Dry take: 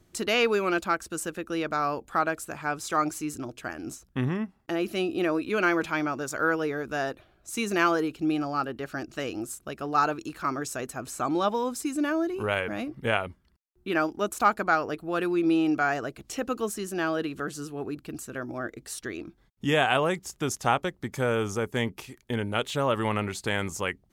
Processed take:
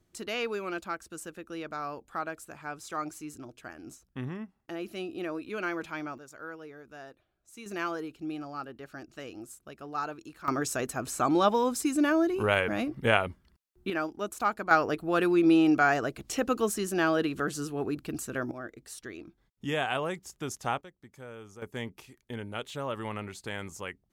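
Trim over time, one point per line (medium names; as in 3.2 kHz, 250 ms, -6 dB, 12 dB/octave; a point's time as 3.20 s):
-9 dB
from 6.18 s -17 dB
from 7.66 s -10 dB
from 10.48 s +2 dB
from 13.90 s -6 dB
from 14.71 s +2 dB
from 18.51 s -7 dB
from 20.81 s -19 dB
from 21.62 s -9 dB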